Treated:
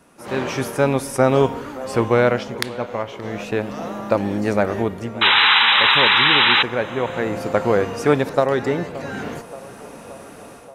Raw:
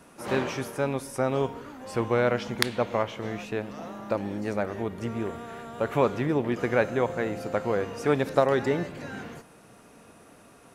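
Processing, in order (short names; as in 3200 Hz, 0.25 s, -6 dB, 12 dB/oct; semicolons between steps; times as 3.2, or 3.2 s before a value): painted sound noise, 5.21–6.63, 780–4000 Hz -14 dBFS; AGC gain up to 13 dB; on a send: narrowing echo 0.576 s, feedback 71%, band-pass 710 Hz, level -16 dB; on the sum: attack slew limiter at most 570 dB/s; gain -1 dB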